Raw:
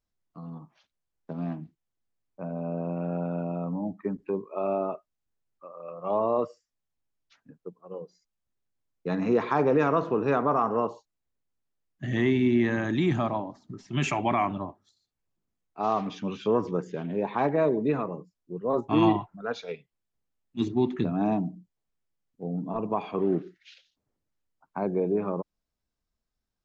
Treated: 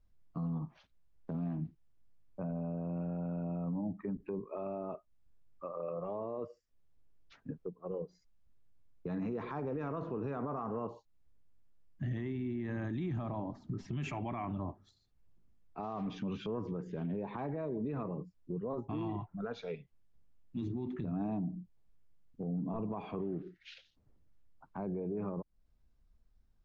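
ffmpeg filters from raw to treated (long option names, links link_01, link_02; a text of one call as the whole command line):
ffmpeg -i in.wav -filter_complex "[0:a]asettb=1/sr,asplit=3[link_01][link_02][link_03];[link_01]atrim=end=5.774[link_04];[link_02]atrim=start=5.77:end=8.02,asetpts=PTS-STARTPTS,afade=type=in:duration=0.004:curve=qsin,afade=type=out:start_time=2.246:duration=0.004:curve=qsin,equalizer=frequency=420:width=1.5:gain=5.5[link_05];[link_03]atrim=start=8.016[link_06];[link_04][link_05]acrossfade=duration=0.004:curve1=hsin:curve2=qsin[link_07];[link_07][link_06]acrossfade=duration=0.004:curve1=qsin:curve2=hsin,acompressor=threshold=-41dB:ratio=3,aemphasis=mode=reproduction:type=bsi,alimiter=level_in=9dB:limit=-24dB:level=0:latency=1:release=25,volume=-9dB,volume=3dB" out.wav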